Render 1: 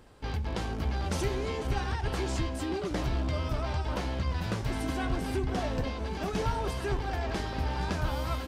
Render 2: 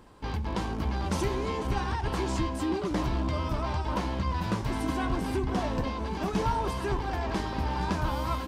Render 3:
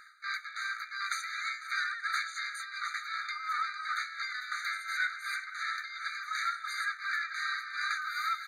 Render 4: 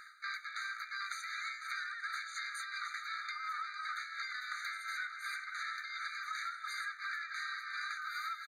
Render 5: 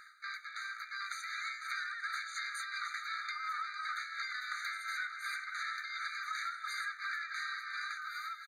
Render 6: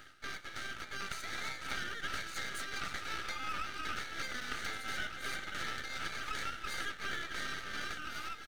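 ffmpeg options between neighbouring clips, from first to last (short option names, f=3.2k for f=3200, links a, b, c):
-af "equalizer=f=200:t=o:w=0.33:g=6,equalizer=f=315:t=o:w=0.33:g=5,equalizer=f=1k:t=o:w=0.33:g=9"
-filter_complex "[0:a]tremolo=f=2.8:d=0.72,asplit=2[a][b];[b]highpass=f=720:p=1,volume=18dB,asoftclip=type=tanh:threshold=-16.5dB[c];[a][c]amix=inputs=2:normalize=0,lowpass=f=2.9k:p=1,volume=-6dB,afftfilt=real='re*eq(mod(floor(b*sr/1024/1200),2),1)':imag='im*eq(mod(floor(b*sr/1024/1200),2),1)':win_size=1024:overlap=0.75,volume=3dB"
-filter_complex "[0:a]acompressor=threshold=-39dB:ratio=6,asplit=2[a][b];[b]adelay=1516,volume=-9dB,highshelf=f=4k:g=-34.1[c];[a][c]amix=inputs=2:normalize=0,volume=1dB"
-af "dynaudnorm=f=430:g=5:m=3.5dB,volume=-2dB"
-af "aeval=exprs='max(val(0),0)':c=same,volume=4dB"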